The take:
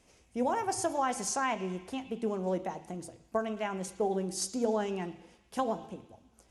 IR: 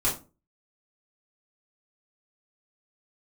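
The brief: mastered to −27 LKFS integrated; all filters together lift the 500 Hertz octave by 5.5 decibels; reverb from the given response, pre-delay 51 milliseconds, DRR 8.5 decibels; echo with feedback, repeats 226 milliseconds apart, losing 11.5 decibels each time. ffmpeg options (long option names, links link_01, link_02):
-filter_complex "[0:a]equalizer=frequency=500:width_type=o:gain=7,aecho=1:1:226|452|678:0.266|0.0718|0.0194,asplit=2[link_01][link_02];[1:a]atrim=start_sample=2205,adelay=51[link_03];[link_02][link_03]afir=irnorm=-1:irlink=0,volume=-18.5dB[link_04];[link_01][link_04]amix=inputs=2:normalize=0,volume=2.5dB"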